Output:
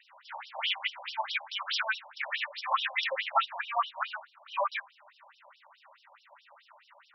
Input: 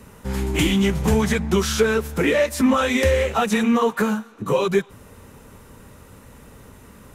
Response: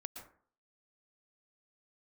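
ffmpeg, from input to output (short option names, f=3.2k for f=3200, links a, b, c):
-af "afftfilt=real='re*between(b*sr/1024,730*pow(4100/730,0.5+0.5*sin(2*PI*4.7*pts/sr))/1.41,730*pow(4100/730,0.5+0.5*sin(2*PI*4.7*pts/sr))*1.41)':imag='im*between(b*sr/1024,730*pow(4100/730,0.5+0.5*sin(2*PI*4.7*pts/sr))/1.41,730*pow(4100/730,0.5+0.5*sin(2*PI*4.7*pts/sr))*1.41)':win_size=1024:overlap=0.75"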